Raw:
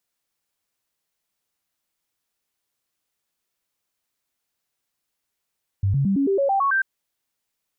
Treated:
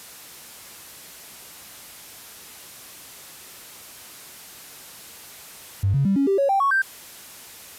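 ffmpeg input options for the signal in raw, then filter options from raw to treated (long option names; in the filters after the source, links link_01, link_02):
-f lavfi -i "aevalsrc='0.141*clip(min(mod(t,0.11),0.11-mod(t,0.11))/0.005,0,1)*sin(2*PI*98*pow(2,floor(t/0.11)/2)*mod(t,0.11))':duration=0.99:sample_rate=44100"
-af "aeval=exprs='val(0)+0.5*0.0168*sgn(val(0))':channel_layout=same,highpass=49" -ar 32000 -c:a aac -b:a 96k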